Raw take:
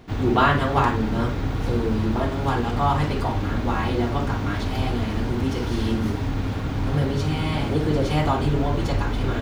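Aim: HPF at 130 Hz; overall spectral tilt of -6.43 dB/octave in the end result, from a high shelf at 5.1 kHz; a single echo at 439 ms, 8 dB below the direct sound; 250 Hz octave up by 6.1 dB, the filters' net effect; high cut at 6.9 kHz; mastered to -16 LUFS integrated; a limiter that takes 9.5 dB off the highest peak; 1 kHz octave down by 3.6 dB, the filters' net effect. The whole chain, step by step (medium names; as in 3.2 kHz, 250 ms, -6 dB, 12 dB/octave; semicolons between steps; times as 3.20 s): high-pass 130 Hz; low-pass 6.9 kHz; peaking EQ 250 Hz +8 dB; peaking EQ 1 kHz -5 dB; treble shelf 5.1 kHz -6.5 dB; peak limiter -15.5 dBFS; delay 439 ms -8 dB; trim +7.5 dB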